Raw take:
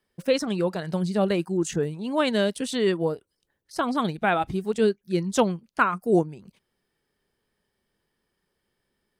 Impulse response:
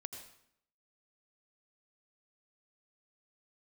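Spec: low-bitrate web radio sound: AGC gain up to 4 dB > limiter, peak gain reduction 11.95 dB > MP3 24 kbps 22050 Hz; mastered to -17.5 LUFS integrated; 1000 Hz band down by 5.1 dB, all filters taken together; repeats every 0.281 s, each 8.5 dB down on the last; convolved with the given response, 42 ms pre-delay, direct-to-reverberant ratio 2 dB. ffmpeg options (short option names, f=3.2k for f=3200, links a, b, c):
-filter_complex "[0:a]equalizer=f=1k:t=o:g=-7,aecho=1:1:281|562|843|1124:0.376|0.143|0.0543|0.0206,asplit=2[a][b];[1:a]atrim=start_sample=2205,adelay=42[c];[b][c]afir=irnorm=-1:irlink=0,volume=1dB[d];[a][d]amix=inputs=2:normalize=0,dynaudnorm=m=4dB,alimiter=limit=-19dB:level=0:latency=1,volume=11.5dB" -ar 22050 -c:a libmp3lame -b:a 24k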